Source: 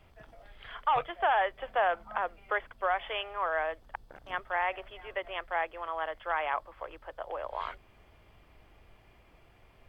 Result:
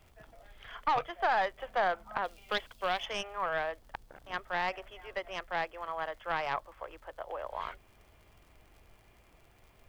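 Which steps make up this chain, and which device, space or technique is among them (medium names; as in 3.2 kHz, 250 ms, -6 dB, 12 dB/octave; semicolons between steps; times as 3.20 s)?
record under a worn stylus (tracing distortion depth 0.07 ms; crackle 77 per s -49 dBFS; white noise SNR 41 dB); 2.24–3.06 s: resonant high shelf 2.5 kHz +8.5 dB, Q 1.5; trim -2 dB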